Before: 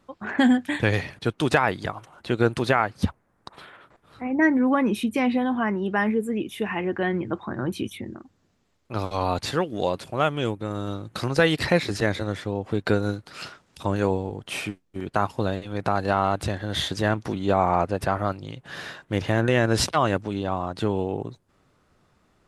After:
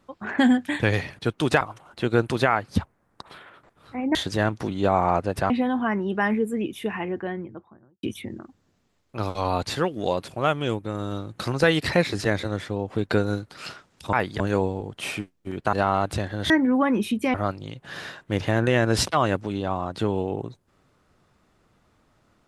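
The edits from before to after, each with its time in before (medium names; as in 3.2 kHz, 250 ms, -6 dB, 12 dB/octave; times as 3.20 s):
1.61–1.88 s: move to 13.89 s
4.42–5.26 s: swap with 16.80–18.15 s
6.42–7.79 s: studio fade out
15.22–16.03 s: delete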